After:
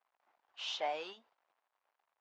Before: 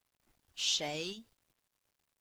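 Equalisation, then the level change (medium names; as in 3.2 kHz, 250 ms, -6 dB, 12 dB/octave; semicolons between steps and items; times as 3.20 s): ladder band-pass 1 kHz, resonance 35%; +15.5 dB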